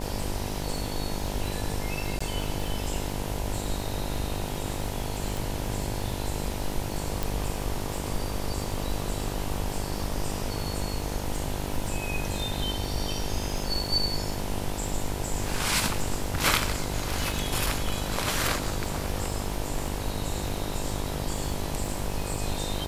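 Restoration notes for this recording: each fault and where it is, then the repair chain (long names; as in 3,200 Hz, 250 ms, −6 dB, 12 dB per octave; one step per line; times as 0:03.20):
mains buzz 50 Hz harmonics 20 −34 dBFS
surface crackle 53 per second −34 dBFS
0:02.19–0:02.21: drop-out 15 ms
0:05.37: click
0:07.23: click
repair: click removal
hum removal 50 Hz, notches 20
repair the gap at 0:02.19, 15 ms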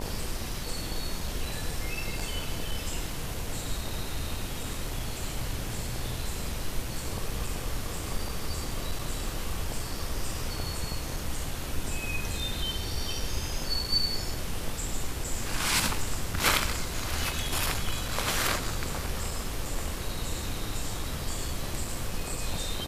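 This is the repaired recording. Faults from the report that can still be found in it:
none of them is left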